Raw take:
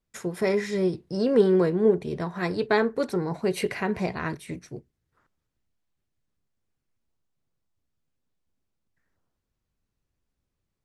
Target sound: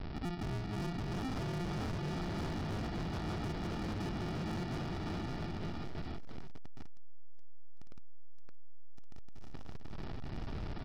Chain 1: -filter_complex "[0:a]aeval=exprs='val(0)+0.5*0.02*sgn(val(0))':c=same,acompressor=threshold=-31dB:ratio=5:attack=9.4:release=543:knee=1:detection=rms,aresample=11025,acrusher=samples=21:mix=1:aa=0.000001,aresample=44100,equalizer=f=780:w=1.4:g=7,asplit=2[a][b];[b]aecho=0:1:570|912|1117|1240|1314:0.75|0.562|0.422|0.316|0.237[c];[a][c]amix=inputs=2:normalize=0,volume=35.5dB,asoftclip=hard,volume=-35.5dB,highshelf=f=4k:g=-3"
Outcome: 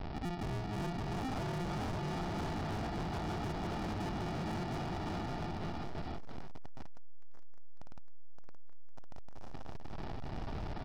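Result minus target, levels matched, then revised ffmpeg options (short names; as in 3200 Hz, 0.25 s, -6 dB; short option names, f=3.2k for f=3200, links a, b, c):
1000 Hz band +4.0 dB
-filter_complex "[0:a]aeval=exprs='val(0)+0.5*0.02*sgn(val(0))':c=same,acompressor=threshold=-31dB:ratio=5:attack=9.4:release=543:knee=1:detection=rms,aresample=11025,acrusher=samples=21:mix=1:aa=0.000001,aresample=44100,asplit=2[a][b];[b]aecho=0:1:570|912|1117|1240|1314:0.75|0.562|0.422|0.316|0.237[c];[a][c]amix=inputs=2:normalize=0,volume=35.5dB,asoftclip=hard,volume=-35.5dB,highshelf=f=4k:g=-3"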